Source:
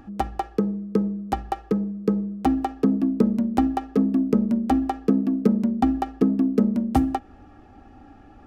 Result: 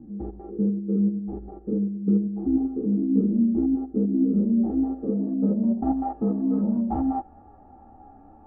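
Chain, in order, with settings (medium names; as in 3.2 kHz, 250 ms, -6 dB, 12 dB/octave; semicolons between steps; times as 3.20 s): spectrogram pixelated in time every 100 ms; low-pass sweep 370 Hz -> 830 Hz, 4.12–6.26 s; three-phase chorus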